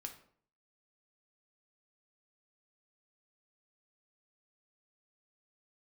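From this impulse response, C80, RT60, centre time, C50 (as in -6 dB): 14.5 dB, 0.55 s, 12 ms, 10.5 dB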